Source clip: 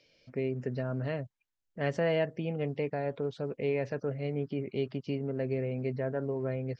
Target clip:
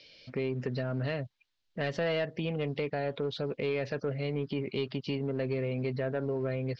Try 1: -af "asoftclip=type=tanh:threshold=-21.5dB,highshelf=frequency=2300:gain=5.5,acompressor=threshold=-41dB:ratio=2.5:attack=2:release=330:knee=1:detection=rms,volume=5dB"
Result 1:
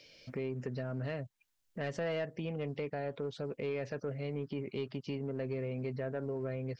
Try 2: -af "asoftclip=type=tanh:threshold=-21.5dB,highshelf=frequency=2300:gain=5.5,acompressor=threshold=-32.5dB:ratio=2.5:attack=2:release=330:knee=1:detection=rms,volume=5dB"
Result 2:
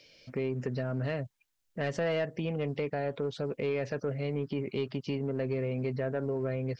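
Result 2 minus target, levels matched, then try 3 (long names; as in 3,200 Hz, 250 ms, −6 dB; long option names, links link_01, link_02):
4,000 Hz band −4.0 dB
-af "asoftclip=type=tanh:threshold=-21.5dB,lowpass=frequency=4100:width_type=q:width=2,highshelf=frequency=2300:gain=5.5,acompressor=threshold=-32.5dB:ratio=2.5:attack=2:release=330:knee=1:detection=rms,volume=5dB"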